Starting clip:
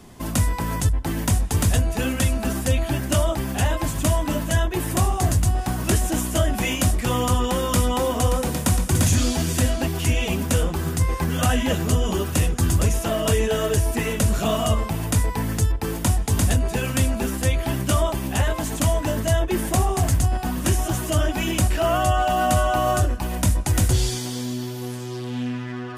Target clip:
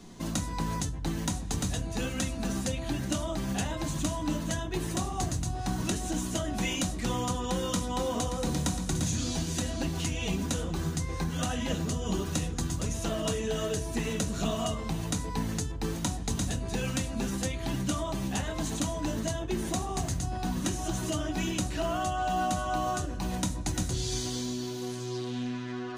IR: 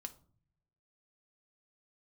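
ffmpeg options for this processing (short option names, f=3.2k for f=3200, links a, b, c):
-filter_complex "[0:a]equalizer=f=160:t=o:w=0.33:g=6,equalizer=f=315:t=o:w=0.33:g=7,equalizer=f=4k:t=o:w=0.33:g=8,equalizer=f=6.3k:t=o:w=0.33:g=7,equalizer=f=12.5k:t=o:w=0.33:g=-11,acompressor=threshold=-21dB:ratio=6[a];[1:a]atrim=start_sample=2205[b];[a][b]afir=irnorm=-1:irlink=0,volume=-1.5dB"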